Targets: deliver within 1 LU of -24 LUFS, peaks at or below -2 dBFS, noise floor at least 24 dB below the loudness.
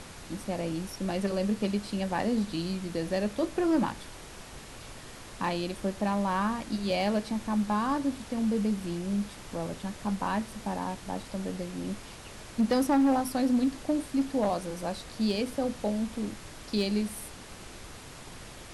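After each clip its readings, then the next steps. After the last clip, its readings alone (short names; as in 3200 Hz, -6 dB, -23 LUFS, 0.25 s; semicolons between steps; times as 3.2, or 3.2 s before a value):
clipped 0.5%; flat tops at -19.5 dBFS; noise floor -46 dBFS; noise floor target -55 dBFS; loudness -30.5 LUFS; peak -19.5 dBFS; loudness target -24.0 LUFS
-> clip repair -19.5 dBFS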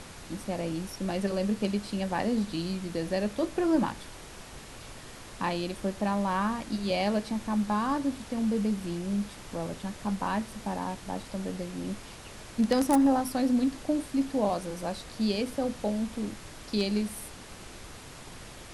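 clipped 0.0%; noise floor -46 dBFS; noise floor target -55 dBFS
-> noise print and reduce 9 dB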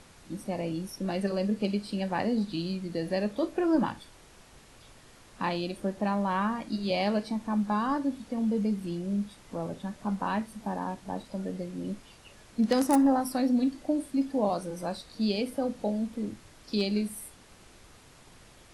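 noise floor -55 dBFS; loudness -30.5 LUFS; peak -10.5 dBFS; loudness target -24.0 LUFS
-> gain +6.5 dB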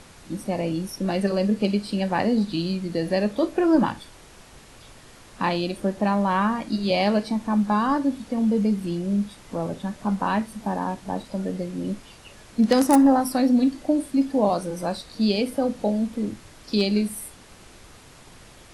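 loudness -24.0 LUFS; peak -4.0 dBFS; noise floor -48 dBFS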